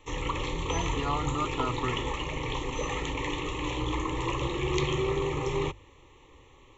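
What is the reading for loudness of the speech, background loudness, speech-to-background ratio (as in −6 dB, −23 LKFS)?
−34.5 LKFS, −31.5 LKFS, −3.0 dB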